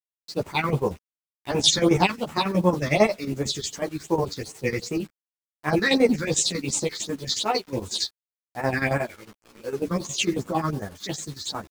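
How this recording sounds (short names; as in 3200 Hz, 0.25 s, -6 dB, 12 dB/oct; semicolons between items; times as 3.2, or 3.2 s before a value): phasing stages 6, 2.7 Hz, lowest notch 710–4300 Hz; a quantiser's noise floor 8-bit, dither none; chopped level 11 Hz, depth 65%, duty 60%; a shimmering, thickened sound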